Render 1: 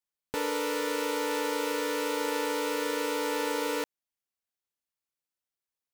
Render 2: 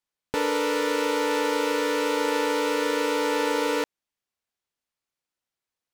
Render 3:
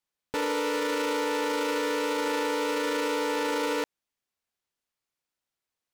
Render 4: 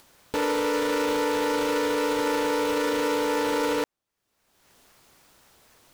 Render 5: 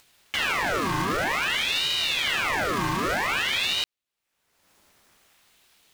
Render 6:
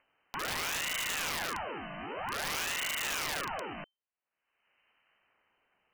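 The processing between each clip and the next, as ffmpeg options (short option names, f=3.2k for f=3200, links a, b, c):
-af "highshelf=f=9.2k:g=-11,volume=6dB"
-af "alimiter=limit=-20.5dB:level=0:latency=1:release=13"
-filter_complex "[0:a]asplit=2[a][b];[b]acrusher=samples=14:mix=1:aa=0.000001:lfo=1:lforange=8.4:lforate=3.8,volume=-5dB[c];[a][c]amix=inputs=2:normalize=0,acompressor=mode=upward:threshold=-35dB:ratio=2.5"
-filter_complex "[0:a]asplit=2[a][b];[b]acrusher=bits=4:mix=0:aa=0.000001,volume=-11.5dB[c];[a][c]amix=inputs=2:normalize=0,aeval=exprs='val(0)*sin(2*PI*2000*n/s+2000*0.7/0.52*sin(2*PI*0.52*n/s))':c=same"
-af "lowpass=f=2.6k:t=q:w=0.5098,lowpass=f=2.6k:t=q:w=0.6013,lowpass=f=2.6k:t=q:w=0.9,lowpass=f=2.6k:t=q:w=2.563,afreqshift=-3100,aeval=exprs='(mod(9.44*val(0)+1,2)-1)/9.44':c=same,volume=-8dB"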